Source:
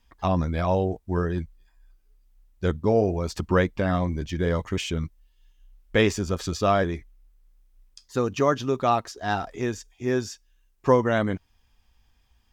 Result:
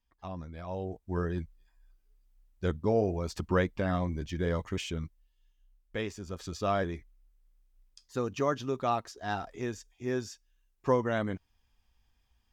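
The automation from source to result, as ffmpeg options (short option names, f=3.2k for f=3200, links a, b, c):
-af "volume=2.5dB,afade=t=in:st=0.65:d=0.59:silence=0.281838,afade=t=out:st=4.61:d=1.52:silence=0.316228,afade=t=in:st=6.13:d=0.64:silence=0.375837"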